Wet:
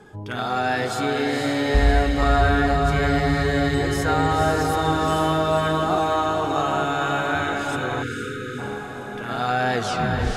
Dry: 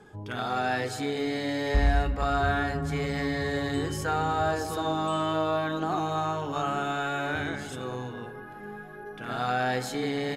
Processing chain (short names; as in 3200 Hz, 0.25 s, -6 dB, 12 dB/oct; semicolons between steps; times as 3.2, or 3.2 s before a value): tape stop at the end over 0.62 s; diffused feedback echo 0.496 s, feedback 54%, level -3.5 dB; spectral delete 8.03–8.59, 530–1200 Hz; gain +5 dB